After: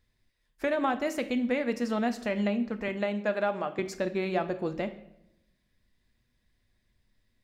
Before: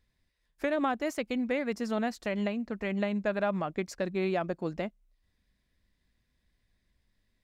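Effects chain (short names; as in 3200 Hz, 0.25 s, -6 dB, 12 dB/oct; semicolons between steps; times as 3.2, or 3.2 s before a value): 2.88–3.79 HPF 260 Hz 12 dB/oct; reverb RT60 0.85 s, pre-delay 8 ms, DRR 7.5 dB; gain +1 dB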